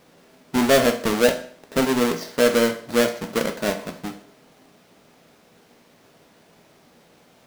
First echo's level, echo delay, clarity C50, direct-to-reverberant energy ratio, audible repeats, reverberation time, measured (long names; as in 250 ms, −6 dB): no echo audible, no echo audible, 11.5 dB, 5.5 dB, no echo audible, 0.50 s